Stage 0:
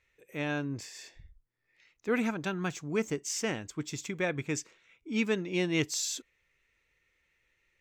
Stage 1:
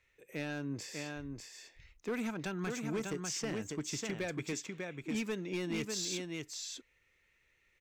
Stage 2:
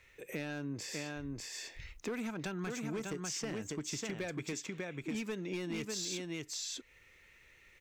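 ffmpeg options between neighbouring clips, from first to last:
ffmpeg -i in.wav -filter_complex "[0:a]acrossover=split=150|6100[link_01][link_02][link_03];[link_01]acompressor=threshold=-50dB:ratio=4[link_04];[link_02]acompressor=threshold=-34dB:ratio=4[link_05];[link_03]acompressor=threshold=-49dB:ratio=4[link_06];[link_04][link_05][link_06]amix=inputs=3:normalize=0,aecho=1:1:596:0.562,asoftclip=type=hard:threshold=-30dB" out.wav
ffmpeg -i in.wav -af "acompressor=threshold=-51dB:ratio=3,volume=10.5dB" out.wav

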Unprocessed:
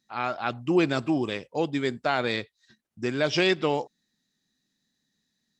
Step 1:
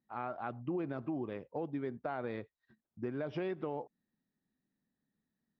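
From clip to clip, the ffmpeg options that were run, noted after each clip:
ffmpeg -i in.wav -af "lowpass=1200,alimiter=limit=-17.5dB:level=0:latency=1:release=39,acompressor=threshold=-32dB:ratio=2.5,volume=-4.5dB" out.wav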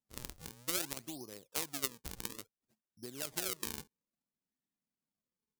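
ffmpeg -i in.wav -af "acrusher=samples=38:mix=1:aa=0.000001:lfo=1:lforange=60.8:lforate=0.59,bass=frequency=250:gain=-2,treble=frequency=4000:gain=12,aeval=exprs='0.178*(cos(1*acos(clip(val(0)/0.178,-1,1)))-cos(1*PI/2))+0.0501*(cos(3*acos(clip(val(0)/0.178,-1,1)))-cos(3*PI/2))':channel_layout=same,volume=5.5dB" out.wav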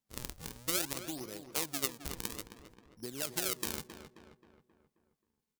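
ffmpeg -i in.wav -filter_complex "[0:a]asplit=2[link_01][link_02];[link_02]asoftclip=type=hard:threshold=-18.5dB,volume=-5dB[link_03];[link_01][link_03]amix=inputs=2:normalize=0,asplit=2[link_04][link_05];[link_05]adelay=266,lowpass=frequency=2600:poles=1,volume=-9.5dB,asplit=2[link_06][link_07];[link_07]adelay=266,lowpass=frequency=2600:poles=1,volume=0.51,asplit=2[link_08][link_09];[link_09]adelay=266,lowpass=frequency=2600:poles=1,volume=0.51,asplit=2[link_10][link_11];[link_11]adelay=266,lowpass=frequency=2600:poles=1,volume=0.51,asplit=2[link_12][link_13];[link_13]adelay=266,lowpass=frequency=2600:poles=1,volume=0.51,asplit=2[link_14][link_15];[link_15]adelay=266,lowpass=frequency=2600:poles=1,volume=0.51[link_16];[link_04][link_06][link_08][link_10][link_12][link_14][link_16]amix=inputs=7:normalize=0" out.wav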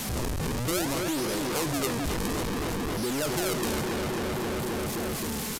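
ffmpeg -i in.wav -af "aeval=exprs='val(0)+0.5*0.0631*sgn(val(0))':channel_layout=same,aresample=32000,aresample=44100" out.wav

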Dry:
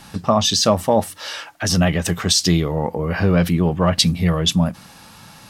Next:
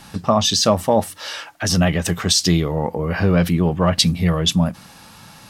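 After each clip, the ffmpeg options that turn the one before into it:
ffmpeg -i in.wav -af anull out.wav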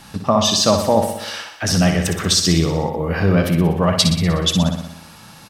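ffmpeg -i in.wav -af "aecho=1:1:61|122|183|244|305|366|427|488:0.447|0.268|0.161|0.0965|0.0579|0.0347|0.0208|0.0125" out.wav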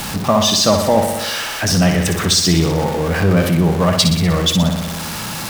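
ffmpeg -i in.wav -af "aeval=exprs='val(0)+0.5*0.0944*sgn(val(0))':channel_layout=same" out.wav

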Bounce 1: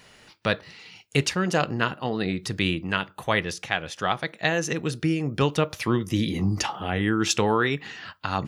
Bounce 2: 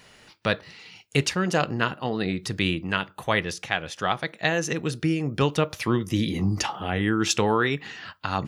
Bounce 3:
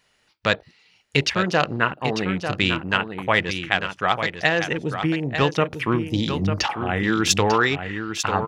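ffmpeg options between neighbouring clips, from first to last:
ffmpeg -i in.wav -af anull out.wav
ffmpeg -i in.wav -filter_complex "[0:a]afwtdn=0.0178,equalizer=frequency=180:width=0.35:gain=-5,asplit=2[link_01][link_02];[link_02]aecho=0:1:896:0.398[link_03];[link_01][link_03]amix=inputs=2:normalize=0,volume=5.5dB" out.wav

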